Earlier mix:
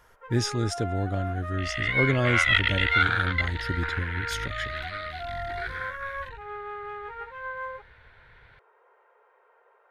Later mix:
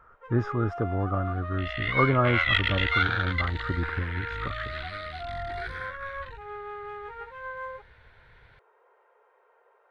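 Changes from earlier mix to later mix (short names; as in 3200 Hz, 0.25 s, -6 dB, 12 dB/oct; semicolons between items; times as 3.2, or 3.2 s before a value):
speech: add synth low-pass 1200 Hz, resonance Q 12; master: add bell 1700 Hz -3 dB 1.9 oct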